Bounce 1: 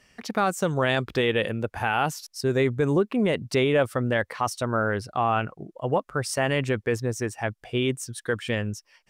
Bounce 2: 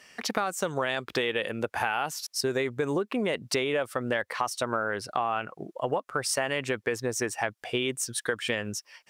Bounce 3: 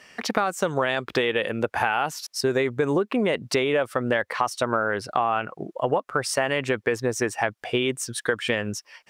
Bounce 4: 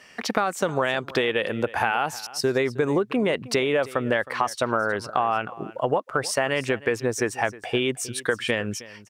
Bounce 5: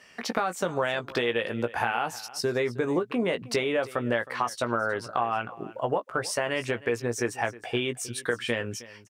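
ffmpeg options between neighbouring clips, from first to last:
ffmpeg -i in.wav -af "highpass=frequency=500:poles=1,acompressor=threshold=-32dB:ratio=6,volume=7dB" out.wav
ffmpeg -i in.wav -af "highshelf=frequency=4100:gain=-7,volume=5.5dB" out.wav
ffmpeg -i in.wav -af "aecho=1:1:314:0.119" out.wav
ffmpeg -i in.wav -filter_complex "[0:a]asplit=2[link_01][link_02];[link_02]adelay=17,volume=-8dB[link_03];[link_01][link_03]amix=inputs=2:normalize=0,volume=-4.5dB" out.wav

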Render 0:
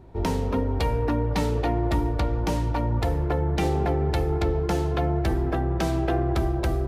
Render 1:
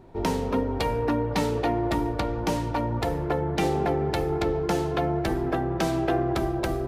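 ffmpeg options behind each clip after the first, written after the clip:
ffmpeg -i in.wav -af "equalizer=frequency=66:width_type=o:width=1.3:gain=-12.5,volume=1.5dB" out.wav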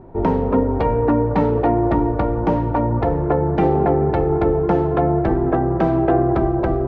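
ffmpeg -i in.wav -af "lowpass=1200,volume=8.5dB" out.wav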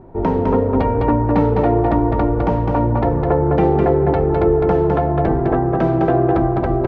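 ffmpeg -i in.wav -af "aecho=1:1:207:0.668" out.wav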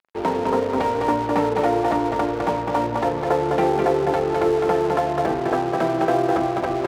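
ffmpeg -i in.wav -af "aeval=exprs='sgn(val(0))*max(abs(val(0))-0.0224,0)':channel_layout=same,highpass=frequency=650:poles=1,volume=2dB" out.wav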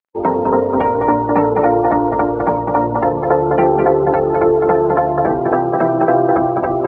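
ffmpeg -i in.wav -af "afftdn=noise_reduction=23:noise_floor=-30,volume=6.5dB" out.wav

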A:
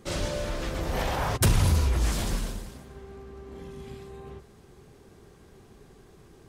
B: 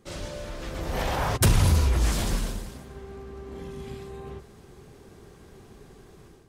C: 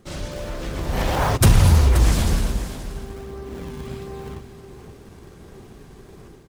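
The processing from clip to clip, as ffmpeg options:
ffmpeg -i in.wav -af "dynaudnorm=framelen=570:gausssize=3:maxgain=10dB,volume=-6.5dB" out.wav
ffmpeg -i in.wav -filter_complex "[0:a]asplit=2[link_01][link_02];[link_02]acrusher=samples=39:mix=1:aa=0.000001:lfo=1:lforange=62.4:lforate=1.4,volume=-5.5dB[link_03];[link_01][link_03]amix=inputs=2:normalize=0,aecho=1:1:529:0.237,volume=3dB" out.wav

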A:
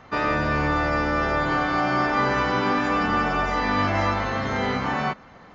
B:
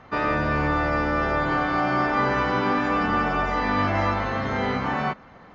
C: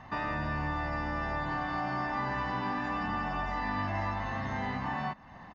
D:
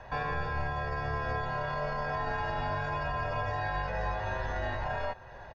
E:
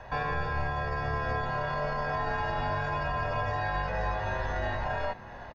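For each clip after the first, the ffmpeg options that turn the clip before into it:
ffmpeg -i in.wav -af "highshelf=frequency=5500:gain=-11" out.wav
ffmpeg -i in.wav -af "aecho=1:1:1.1:0.64,acompressor=threshold=-35dB:ratio=2,volume=-2.5dB" out.wav
ffmpeg -i in.wav -af "alimiter=level_in=2.5dB:limit=-24dB:level=0:latency=1:release=20,volume=-2.5dB,aecho=1:1:889:0.106,afreqshift=-150,volume=2dB" out.wav
ffmpeg -i in.wav -filter_complex "[0:a]asplit=5[link_01][link_02][link_03][link_04][link_05];[link_02]adelay=379,afreqshift=93,volume=-20dB[link_06];[link_03]adelay=758,afreqshift=186,volume=-25.8dB[link_07];[link_04]adelay=1137,afreqshift=279,volume=-31.7dB[link_08];[link_05]adelay=1516,afreqshift=372,volume=-37.5dB[link_09];[link_01][link_06][link_07][link_08][link_09]amix=inputs=5:normalize=0,volume=2dB" out.wav

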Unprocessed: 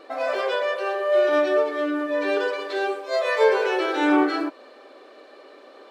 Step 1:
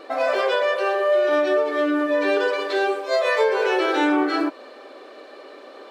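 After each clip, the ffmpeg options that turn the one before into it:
ffmpeg -i in.wav -af "acompressor=threshold=-21dB:ratio=6,volume=5dB" out.wav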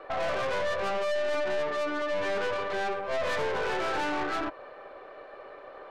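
ffmpeg -i in.wav -filter_complex "[0:a]acrossover=split=430 2300:gain=0.141 1 0.0891[link_01][link_02][link_03];[link_01][link_02][link_03]amix=inputs=3:normalize=0,aeval=exprs='(tanh(28.2*val(0)+0.55)-tanh(0.55))/28.2':channel_layout=same,volume=1.5dB" out.wav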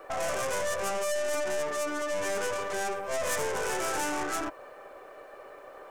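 ffmpeg -i in.wav -af "aexciter=amount=11.6:drive=3.8:freq=6000,volume=-1.5dB" out.wav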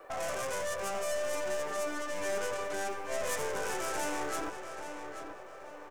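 ffmpeg -i in.wav -filter_complex "[0:a]acrossover=split=470|5100[link_01][link_02][link_03];[link_01]acrusher=bits=5:mode=log:mix=0:aa=0.000001[link_04];[link_04][link_02][link_03]amix=inputs=3:normalize=0,asplit=2[link_05][link_06];[link_06]adelay=832,lowpass=frequency=4500:poles=1,volume=-8dB,asplit=2[link_07][link_08];[link_08]adelay=832,lowpass=frequency=4500:poles=1,volume=0.42,asplit=2[link_09][link_10];[link_10]adelay=832,lowpass=frequency=4500:poles=1,volume=0.42,asplit=2[link_11][link_12];[link_12]adelay=832,lowpass=frequency=4500:poles=1,volume=0.42,asplit=2[link_13][link_14];[link_14]adelay=832,lowpass=frequency=4500:poles=1,volume=0.42[link_15];[link_05][link_07][link_09][link_11][link_13][link_15]amix=inputs=6:normalize=0,volume=-4.5dB" out.wav

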